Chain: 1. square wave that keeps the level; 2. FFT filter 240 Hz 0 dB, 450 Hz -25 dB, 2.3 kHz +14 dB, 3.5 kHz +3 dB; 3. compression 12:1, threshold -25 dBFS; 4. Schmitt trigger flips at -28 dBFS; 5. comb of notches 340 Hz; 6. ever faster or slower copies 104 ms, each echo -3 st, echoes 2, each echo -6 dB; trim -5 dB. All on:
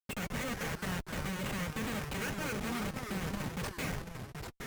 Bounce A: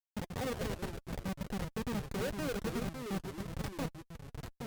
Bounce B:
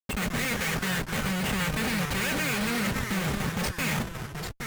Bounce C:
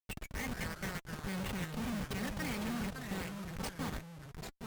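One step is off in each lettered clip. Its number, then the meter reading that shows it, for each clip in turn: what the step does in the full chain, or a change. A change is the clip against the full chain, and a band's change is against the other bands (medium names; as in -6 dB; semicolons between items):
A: 2, 500 Hz band +5.5 dB; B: 3, mean gain reduction 5.0 dB; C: 1, distortion -6 dB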